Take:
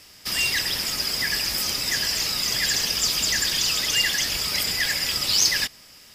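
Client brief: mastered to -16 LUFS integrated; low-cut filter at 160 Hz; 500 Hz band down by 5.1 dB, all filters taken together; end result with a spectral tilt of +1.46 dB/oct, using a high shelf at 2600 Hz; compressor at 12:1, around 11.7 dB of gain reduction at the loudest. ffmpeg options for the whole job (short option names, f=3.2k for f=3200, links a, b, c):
-af "highpass=160,equalizer=f=500:t=o:g=-7,highshelf=f=2.6k:g=8,acompressor=threshold=-20dB:ratio=12,volume=5dB"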